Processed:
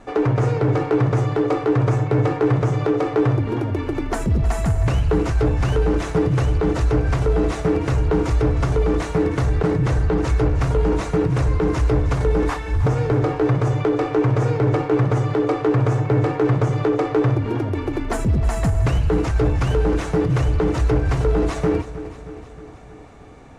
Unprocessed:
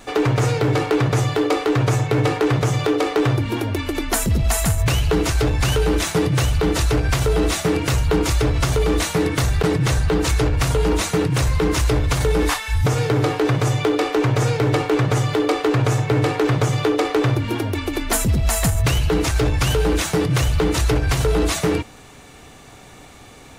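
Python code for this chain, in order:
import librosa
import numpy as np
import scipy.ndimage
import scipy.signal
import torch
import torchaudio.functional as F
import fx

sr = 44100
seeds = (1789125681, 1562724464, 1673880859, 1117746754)

y = scipy.signal.sosfilt(scipy.signal.butter(2, 4600.0, 'lowpass', fs=sr, output='sos'), x)
y = fx.peak_eq(y, sr, hz=3600.0, db=-12.0, octaves=1.8)
y = fx.echo_feedback(y, sr, ms=313, feedback_pct=60, wet_db=-14.5)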